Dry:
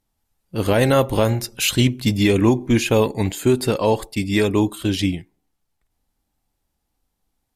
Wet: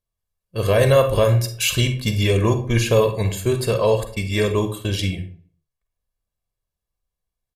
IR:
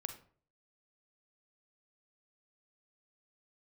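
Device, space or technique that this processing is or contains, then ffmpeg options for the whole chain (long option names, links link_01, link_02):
microphone above a desk: -filter_complex "[0:a]agate=range=-11dB:threshold=-30dB:ratio=16:detection=peak,aecho=1:1:1.8:0.71[link_01];[1:a]atrim=start_sample=2205[link_02];[link_01][link_02]afir=irnorm=-1:irlink=0"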